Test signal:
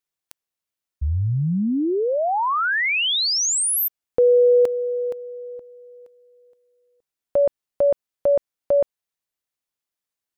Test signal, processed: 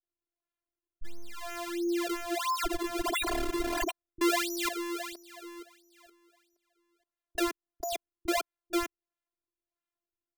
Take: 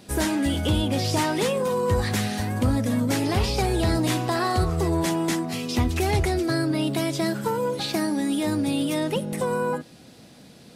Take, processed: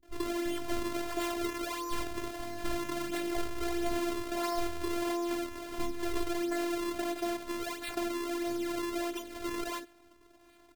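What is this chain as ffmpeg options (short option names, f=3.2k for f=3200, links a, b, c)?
-filter_complex "[0:a]acrusher=samples=33:mix=1:aa=0.000001:lfo=1:lforange=52.8:lforate=1.5,afftfilt=real='hypot(re,im)*cos(PI*b)':imag='0':win_size=512:overlap=0.75,acrossover=split=190[a][b];[b]adelay=30[c];[a][c]amix=inputs=2:normalize=0,volume=-6dB"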